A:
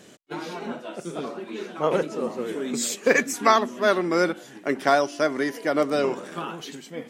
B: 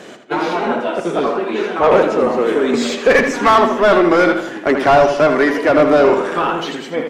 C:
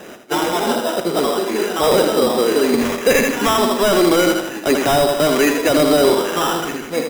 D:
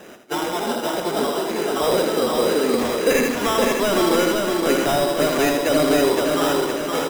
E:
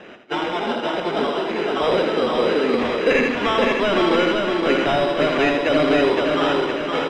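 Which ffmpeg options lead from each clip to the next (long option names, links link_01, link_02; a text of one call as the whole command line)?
ffmpeg -i in.wav -filter_complex "[0:a]acrossover=split=5500[link_01][link_02];[link_02]acompressor=threshold=-47dB:ratio=4:attack=1:release=60[link_03];[link_01][link_03]amix=inputs=2:normalize=0,asplit=2[link_04][link_05];[link_05]highpass=frequency=720:poles=1,volume=25dB,asoftclip=type=tanh:threshold=-3dB[link_06];[link_04][link_06]amix=inputs=2:normalize=0,lowpass=frequency=1200:poles=1,volume=-6dB,asplit=2[link_07][link_08];[link_08]adelay=80,lowpass=frequency=4900:poles=1,volume=-7dB,asplit=2[link_09][link_10];[link_10]adelay=80,lowpass=frequency=4900:poles=1,volume=0.45,asplit=2[link_11][link_12];[link_12]adelay=80,lowpass=frequency=4900:poles=1,volume=0.45,asplit=2[link_13][link_14];[link_14]adelay=80,lowpass=frequency=4900:poles=1,volume=0.45,asplit=2[link_15][link_16];[link_16]adelay=80,lowpass=frequency=4900:poles=1,volume=0.45[link_17];[link_07][link_09][link_11][link_13][link_15][link_17]amix=inputs=6:normalize=0,volume=2dB" out.wav
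ffmpeg -i in.wav -filter_complex "[0:a]acrossover=split=450|2500[link_01][link_02][link_03];[link_02]alimiter=limit=-12dB:level=0:latency=1[link_04];[link_01][link_04][link_03]amix=inputs=3:normalize=0,acrusher=samples=10:mix=1:aa=0.000001" out.wav
ffmpeg -i in.wav -af "aecho=1:1:516|1032|1548|2064|2580|3096:0.668|0.321|0.154|0.0739|0.0355|0.017,volume=-5.5dB" out.wav
ffmpeg -i in.wav -af "lowpass=frequency=2800:width_type=q:width=1.6" out.wav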